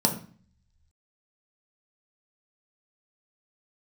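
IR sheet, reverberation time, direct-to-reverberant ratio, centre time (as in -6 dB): 0.45 s, 1.5 dB, 15 ms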